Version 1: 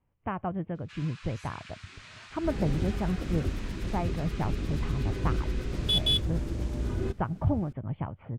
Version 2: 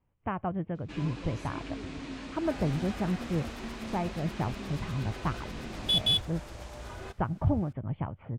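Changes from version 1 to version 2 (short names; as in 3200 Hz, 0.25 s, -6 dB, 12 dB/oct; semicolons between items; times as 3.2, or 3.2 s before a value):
first sound: remove Chebyshev high-pass 1300 Hz, order 3; second sound: add resonant low shelf 470 Hz -13.5 dB, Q 1.5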